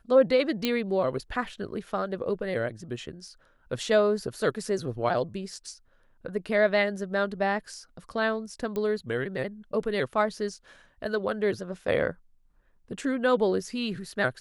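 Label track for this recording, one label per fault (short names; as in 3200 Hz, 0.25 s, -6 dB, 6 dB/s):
0.650000	0.650000	pop -11 dBFS
8.760000	8.760000	pop -19 dBFS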